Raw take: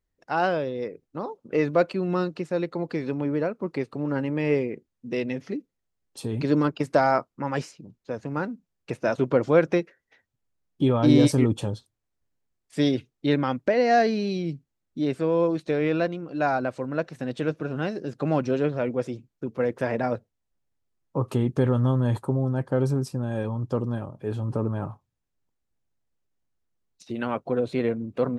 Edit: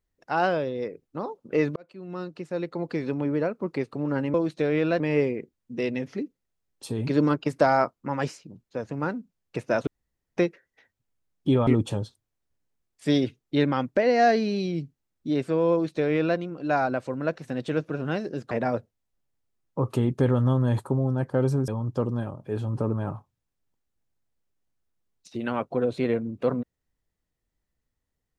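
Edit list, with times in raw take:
1.76–2.99 s: fade in
9.21–9.71 s: room tone
11.01–11.38 s: delete
15.43–16.09 s: copy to 4.34 s
18.22–19.89 s: delete
23.06–23.43 s: delete

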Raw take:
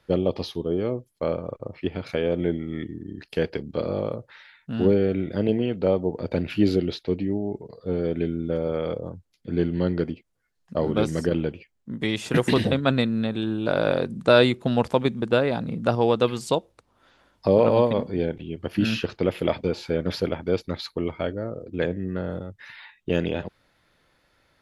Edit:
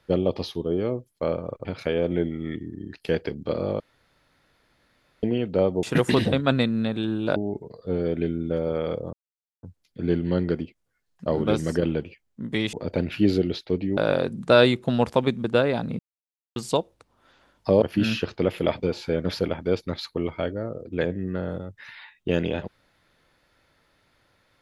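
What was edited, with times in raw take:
1.65–1.93 s: delete
4.08–5.51 s: room tone
6.11–7.35 s: swap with 12.22–13.75 s
9.12 s: insert silence 0.50 s
15.77–16.34 s: mute
17.60–18.63 s: delete

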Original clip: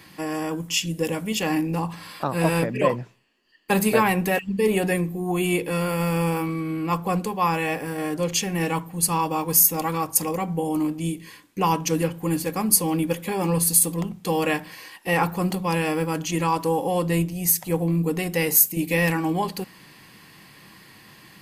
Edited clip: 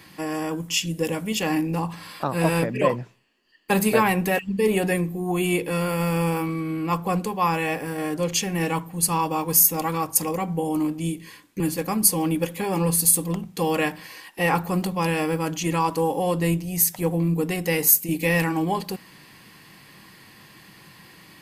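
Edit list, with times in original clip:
11.60–12.28 s: delete

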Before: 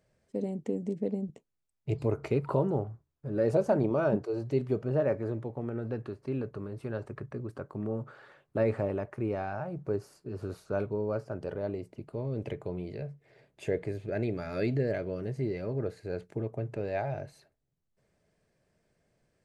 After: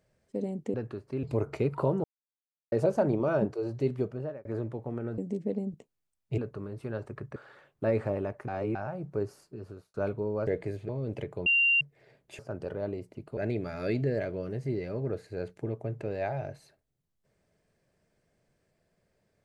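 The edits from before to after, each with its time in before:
0.74–1.94 s: swap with 5.89–6.38 s
2.75–3.43 s: mute
4.67–5.16 s: fade out
7.36–8.09 s: delete
9.21–9.48 s: reverse
10.13–10.67 s: fade out
11.20–12.18 s: swap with 13.68–14.10 s
12.75–13.10 s: bleep 2.77 kHz -20.5 dBFS

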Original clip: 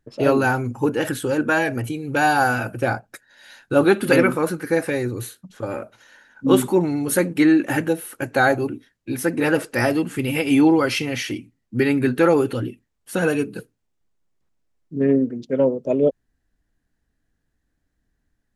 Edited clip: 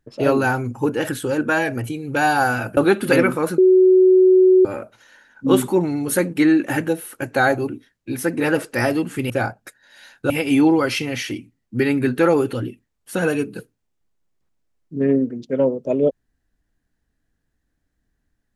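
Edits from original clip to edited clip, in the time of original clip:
2.77–3.77 s: move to 10.30 s
4.58–5.65 s: bleep 372 Hz -8.5 dBFS

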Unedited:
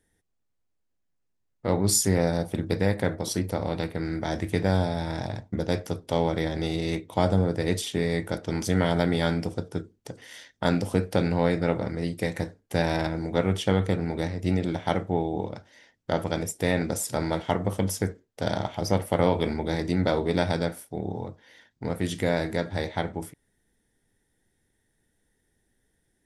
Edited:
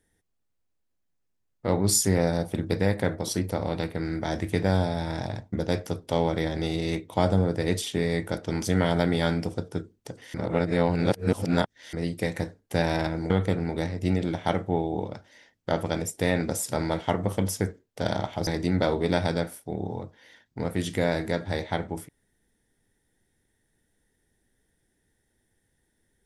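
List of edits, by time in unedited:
10.34–11.93 s: reverse
13.30–13.71 s: delete
18.88–19.72 s: delete

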